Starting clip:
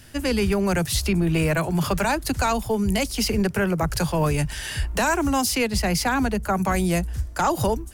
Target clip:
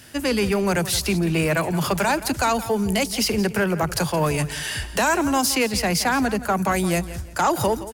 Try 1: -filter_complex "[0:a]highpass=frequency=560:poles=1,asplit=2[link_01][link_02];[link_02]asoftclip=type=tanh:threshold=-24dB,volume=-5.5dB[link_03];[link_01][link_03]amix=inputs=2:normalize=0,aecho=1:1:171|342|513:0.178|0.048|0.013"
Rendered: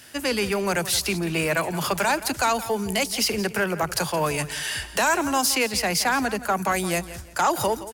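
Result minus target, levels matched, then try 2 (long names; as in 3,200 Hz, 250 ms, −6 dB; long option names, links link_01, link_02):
250 Hz band −3.5 dB
-filter_complex "[0:a]highpass=frequency=190:poles=1,asplit=2[link_01][link_02];[link_02]asoftclip=type=tanh:threshold=-24dB,volume=-5.5dB[link_03];[link_01][link_03]amix=inputs=2:normalize=0,aecho=1:1:171|342|513:0.178|0.048|0.013"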